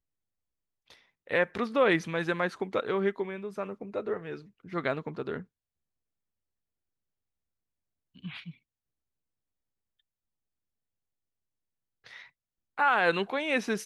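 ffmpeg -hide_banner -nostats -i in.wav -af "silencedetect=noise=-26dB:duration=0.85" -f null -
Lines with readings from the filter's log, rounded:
silence_start: 0.00
silence_end: 1.31 | silence_duration: 1.31
silence_start: 5.34
silence_end: 12.79 | silence_duration: 7.44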